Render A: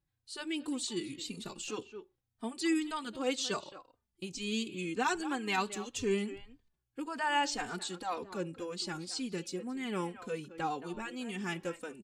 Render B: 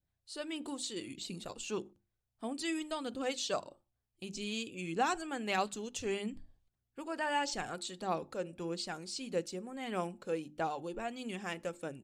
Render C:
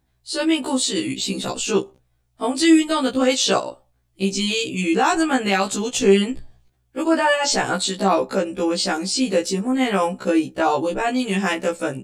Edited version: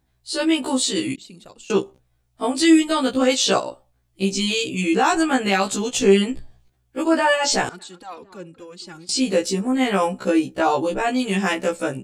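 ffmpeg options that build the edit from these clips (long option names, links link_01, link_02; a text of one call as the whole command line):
ffmpeg -i take0.wav -i take1.wav -i take2.wav -filter_complex "[2:a]asplit=3[link_01][link_02][link_03];[link_01]atrim=end=1.162[link_04];[1:a]atrim=start=1.158:end=1.702[link_05];[link_02]atrim=start=1.698:end=7.692[link_06];[0:a]atrim=start=7.688:end=9.092[link_07];[link_03]atrim=start=9.088[link_08];[link_04][link_05]acrossfade=duration=0.004:curve1=hsin:curve2=hsin[link_09];[link_09][link_06]acrossfade=duration=0.004:curve1=hsin:curve2=hsin[link_10];[link_10][link_07]acrossfade=duration=0.004:curve1=hsin:curve2=hsin[link_11];[link_11][link_08]acrossfade=duration=0.004:curve1=hsin:curve2=hsin" out.wav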